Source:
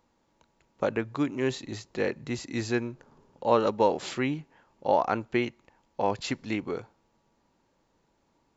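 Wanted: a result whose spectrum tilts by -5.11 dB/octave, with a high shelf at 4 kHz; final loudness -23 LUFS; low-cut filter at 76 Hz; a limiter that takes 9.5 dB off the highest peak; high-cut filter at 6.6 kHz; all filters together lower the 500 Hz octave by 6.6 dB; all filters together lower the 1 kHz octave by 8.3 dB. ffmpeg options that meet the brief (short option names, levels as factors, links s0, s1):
-af "highpass=76,lowpass=6600,equalizer=f=500:t=o:g=-6,equalizer=f=1000:t=o:g=-8,highshelf=f=4000:g=-6,volume=5.31,alimiter=limit=0.355:level=0:latency=1"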